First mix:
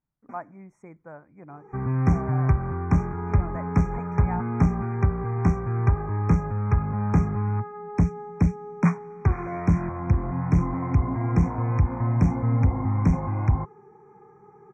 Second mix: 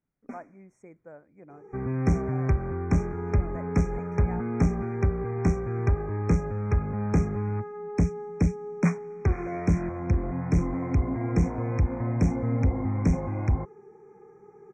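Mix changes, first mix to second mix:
speech −4.0 dB
first sound +7.5 dB
master: add octave-band graphic EQ 125/500/1,000/4,000/8,000 Hz −6/+5/−9/+4/+5 dB

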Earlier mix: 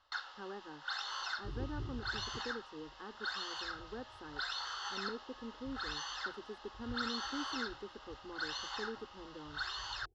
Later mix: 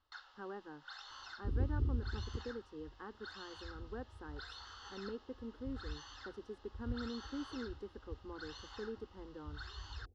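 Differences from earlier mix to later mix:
first sound −11.0 dB
second sound: remove phaser with its sweep stopped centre 360 Hz, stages 8

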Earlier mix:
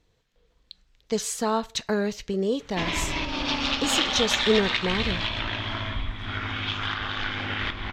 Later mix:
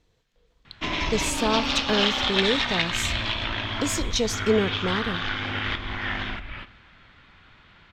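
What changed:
background: entry −1.95 s
reverb: on, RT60 1.1 s

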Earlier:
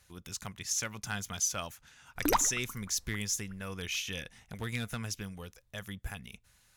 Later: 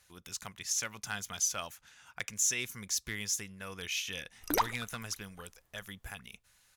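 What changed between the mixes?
background: entry +2.25 s
master: add low-shelf EQ 340 Hz −8.5 dB

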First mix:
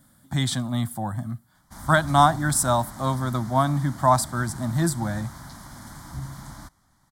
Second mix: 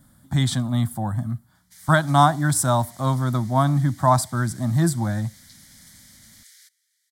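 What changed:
speech: add low-shelf EQ 190 Hz +7 dB
background: add Butterworth high-pass 1,900 Hz 48 dB per octave

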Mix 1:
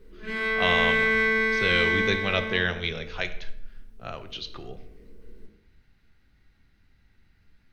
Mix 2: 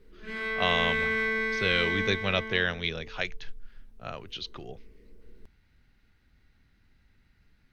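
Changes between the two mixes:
speech: send off
background −5.5 dB

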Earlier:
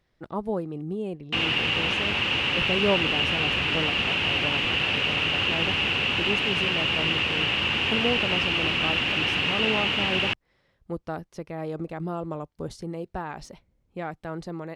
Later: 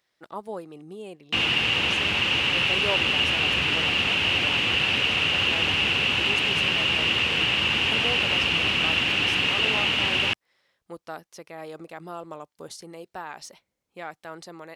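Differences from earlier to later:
speech: add high-pass filter 800 Hz 6 dB per octave
master: add high-shelf EQ 4,800 Hz +9 dB

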